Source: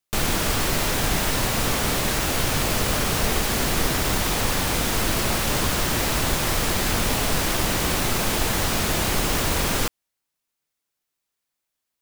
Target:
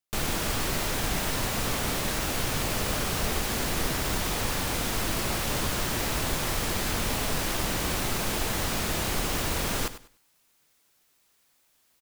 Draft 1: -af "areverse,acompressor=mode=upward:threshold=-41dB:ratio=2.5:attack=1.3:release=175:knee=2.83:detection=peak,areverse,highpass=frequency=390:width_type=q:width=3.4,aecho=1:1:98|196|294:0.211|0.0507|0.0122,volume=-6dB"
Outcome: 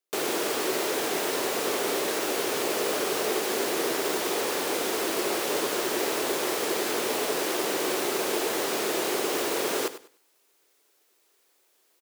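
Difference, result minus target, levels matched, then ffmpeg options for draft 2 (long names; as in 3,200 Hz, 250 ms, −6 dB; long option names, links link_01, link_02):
500 Hz band +6.5 dB
-af "areverse,acompressor=mode=upward:threshold=-41dB:ratio=2.5:attack=1.3:release=175:knee=2.83:detection=peak,areverse,aecho=1:1:98|196|294:0.211|0.0507|0.0122,volume=-6dB"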